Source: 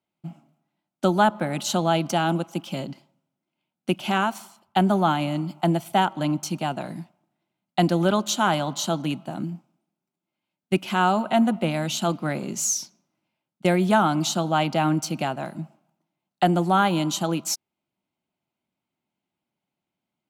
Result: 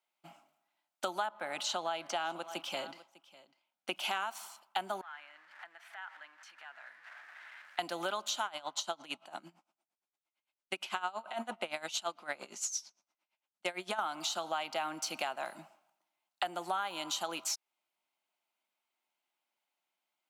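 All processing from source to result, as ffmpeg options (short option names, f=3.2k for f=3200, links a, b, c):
-filter_complex "[0:a]asettb=1/sr,asplit=3[a][b][c];[a]atrim=end=1.264[d];[b]atrim=start=1.26:end=3.96,asetpts=PTS-STARTPTS,afade=t=in:d=0.004:c=qsin,afade=t=out:st=2.696:d=0.004:c=qsin,highshelf=f=4.9k:g=-6,acrossover=split=8000[e][f];[f]acompressor=threshold=-54dB:ratio=4:attack=1:release=60[g];[e][g]amix=inputs=2:normalize=0,aecho=1:1:600:0.0841,atrim=end_sample=119070[h];[c]atrim=start=3.956[i];[d][h]acrossfade=d=0.004:c1=hsin:c2=qsin[j];[j][i]acrossfade=d=0.004:c1=qsin:c2=hsin,asettb=1/sr,asplit=3[k][l][m];[k]atrim=end=5.014[n];[l]atrim=start=5.01:end=7.79,asetpts=PTS-STARTPTS,afade=t=in:d=0.004:c=qsin,afade=t=out:st=2.776:d=0.004:c=qsin,aeval=exprs='val(0)+0.5*0.0211*sgn(val(0))':c=same,acompressor=threshold=-34dB:ratio=2.5:attack=3.2:release=140:knee=1:detection=peak,bandpass=f=1.7k:t=q:w=4.7[o];[m]atrim=start=7.786[p];[n][o]acrossfade=d=0.004:c1=hsin:c2=qsin[q];[q][p]acrossfade=d=0.004:c1=qsin:c2=hsin,asettb=1/sr,asplit=3[r][s][t];[r]atrim=end=8.454[u];[s]atrim=start=8.45:end=13.99,asetpts=PTS-STARTPTS,afade=t=in:d=0.004:c=qsin,afade=t=out:st=5.536:d=0.004:c=qsin,lowpass=10k,aeval=exprs='val(0)*pow(10,-20*(0.5-0.5*cos(2*PI*8.8*n/s))/20)':c=same[v];[t]atrim=start=13.986[w];[u][v]acrossfade=d=0.004:c1=hsin:c2=qsin[x];[x][w]acrossfade=d=0.004:c1=qsin:c2=hsin,acrossover=split=5600[y][z];[z]acompressor=threshold=-36dB:ratio=4:attack=1:release=60[aa];[y][aa]amix=inputs=2:normalize=0,highpass=800,acompressor=threshold=-34dB:ratio=6,volume=1.5dB"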